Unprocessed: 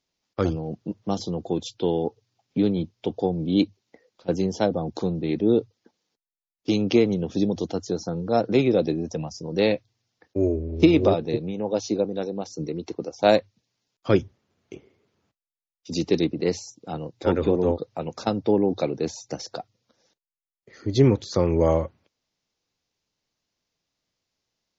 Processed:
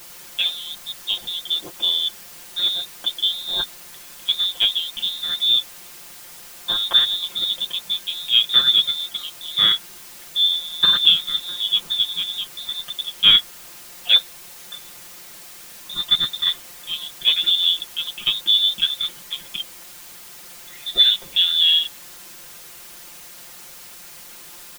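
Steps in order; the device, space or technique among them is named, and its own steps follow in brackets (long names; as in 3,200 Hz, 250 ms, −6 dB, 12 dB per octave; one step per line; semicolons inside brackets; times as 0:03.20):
scrambled radio voice (band-pass filter 350–3,000 Hz; voice inversion scrambler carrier 3,900 Hz; white noise bed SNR 18 dB)
comb filter 5.7 ms, depth 93%
level +3 dB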